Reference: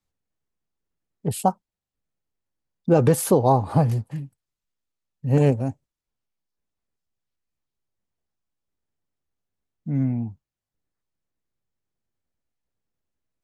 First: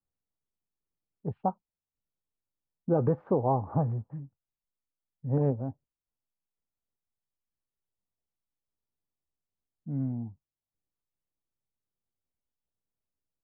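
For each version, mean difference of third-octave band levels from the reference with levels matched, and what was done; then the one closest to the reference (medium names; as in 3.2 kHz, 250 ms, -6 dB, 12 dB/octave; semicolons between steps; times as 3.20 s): 4.5 dB: low-pass 1.3 kHz 24 dB/octave; trim -8.5 dB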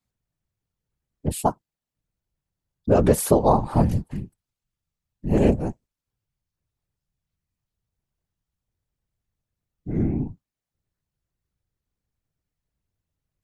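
3.5 dB: whisper effect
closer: second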